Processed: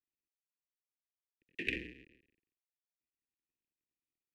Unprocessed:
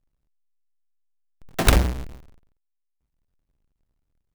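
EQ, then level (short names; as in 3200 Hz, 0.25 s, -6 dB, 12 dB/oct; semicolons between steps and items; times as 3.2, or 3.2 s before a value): vowel filter e; elliptic band-stop 320–2300 Hz, stop band 40 dB; three-band isolator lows -13 dB, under 460 Hz, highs -21 dB, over 2100 Hz; +13.0 dB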